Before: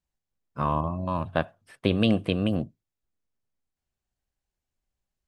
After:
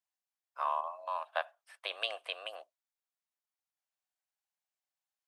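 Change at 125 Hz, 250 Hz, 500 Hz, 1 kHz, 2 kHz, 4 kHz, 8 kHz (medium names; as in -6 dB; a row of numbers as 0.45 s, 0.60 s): under -40 dB, under -40 dB, -12.5 dB, -4.5 dB, -4.5 dB, -4.5 dB, no reading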